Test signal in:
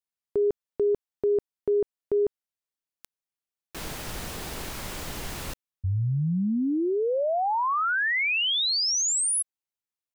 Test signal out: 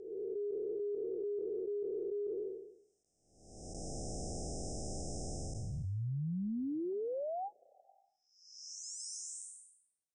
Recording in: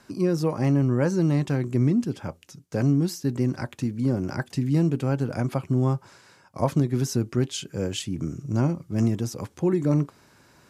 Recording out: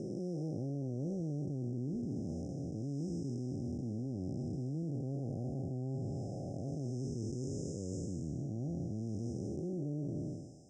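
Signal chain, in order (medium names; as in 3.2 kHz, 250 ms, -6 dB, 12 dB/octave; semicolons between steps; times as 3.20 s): spectral blur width 525 ms; brick-wall FIR band-stop 810–5000 Hz; reverse; compression 6:1, threshold -37 dBFS; reverse; steep low-pass 9.1 kHz 96 dB/octave; trim +1 dB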